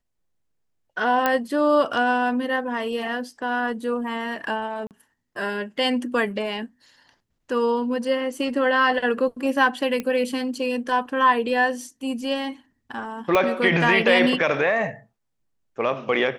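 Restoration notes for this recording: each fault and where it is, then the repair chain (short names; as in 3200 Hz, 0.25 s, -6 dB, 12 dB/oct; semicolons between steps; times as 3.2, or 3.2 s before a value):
1.26 pop -7 dBFS
4.87–4.91 gap 38 ms
10 pop -14 dBFS
13.35 pop -7 dBFS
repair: de-click; interpolate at 4.87, 38 ms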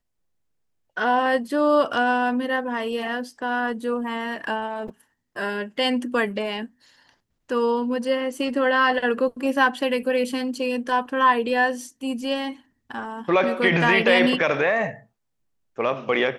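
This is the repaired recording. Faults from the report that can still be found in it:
13.35 pop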